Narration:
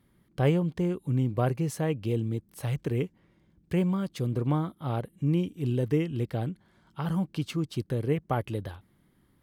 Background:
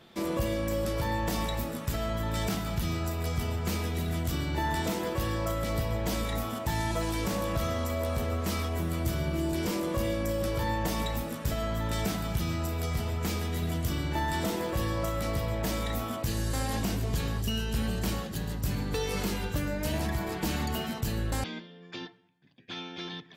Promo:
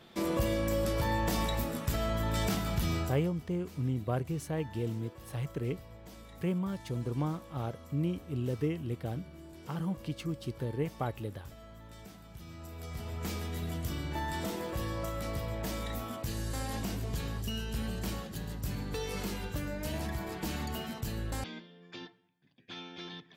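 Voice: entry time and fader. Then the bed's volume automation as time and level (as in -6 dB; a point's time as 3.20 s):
2.70 s, -6.0 dB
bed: 3.01 s -0.5 dB
3.32 s -20 dB
12.27 s -20 dB
13.26 s -5.5 dB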